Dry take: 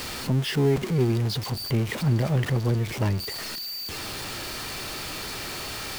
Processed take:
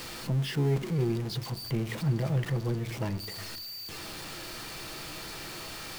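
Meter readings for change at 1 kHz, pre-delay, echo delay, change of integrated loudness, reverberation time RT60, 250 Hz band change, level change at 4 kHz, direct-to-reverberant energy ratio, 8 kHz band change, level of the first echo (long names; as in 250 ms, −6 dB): −6.5 dB, 6 ms, no echo audible, −6.0 dB, 0.65 s, −5.5 dB, −7.0 dB, 11.0 dB, −7.0 dB, no echo audible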